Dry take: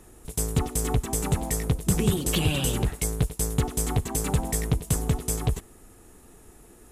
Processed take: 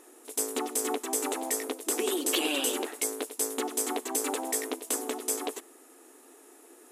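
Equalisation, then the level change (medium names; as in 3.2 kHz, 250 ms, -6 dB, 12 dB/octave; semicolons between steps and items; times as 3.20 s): brick-wall FIR high-pass 250 Hz; 0.0 dB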